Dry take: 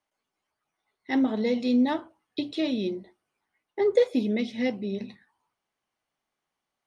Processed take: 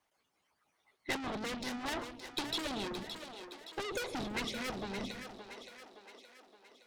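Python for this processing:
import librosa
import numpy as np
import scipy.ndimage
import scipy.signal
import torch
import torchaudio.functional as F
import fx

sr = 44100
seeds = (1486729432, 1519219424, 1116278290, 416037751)

y = fx.tube_stage(x, sr, drive_db=37.0, bias=0.3)
y = fx.hpss(y, sr, part='harmonic', gain_db=-14)
y = fx.echo_split(y, sr, split_hz=320.0, low_ms=158, high_ms=569, feedback_pct=52, wet_db=-8.5)
y = y * librosa.db_to_amplitude(9.5)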